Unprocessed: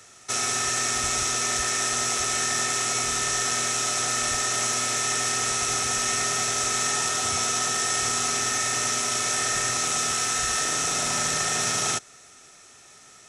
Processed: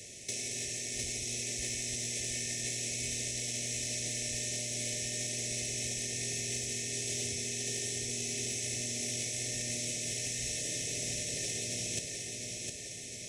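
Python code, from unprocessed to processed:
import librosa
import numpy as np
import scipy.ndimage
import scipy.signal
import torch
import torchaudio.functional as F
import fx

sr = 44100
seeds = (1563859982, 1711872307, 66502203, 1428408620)

p1 = scipy.signal.sosfilt(scipy.signal.ellip(3, 1.0, 60, [600.0, 2100.0], 'bandstop', fs=sr, output='sos'), x)
p2 = fx.over_compress(p1, sr, threshold_db=-32.0, ratio=-0.5)
p3 = 10.0 ** (-19.5 / 20.0) * np.tanh(p2 / 10.0 ** (-19.5 / 20.0))
p4 = fx.low_shelf(p3, sr, hz=360.0, db=4.0)
p5 = p4 + fx.echo_feedback(p4, sr, ms=708, feedback_pct=54, wet_db=-4.5, dry=0)
y = F.gain(torch.from_numpy(p5), -4.0).numpy()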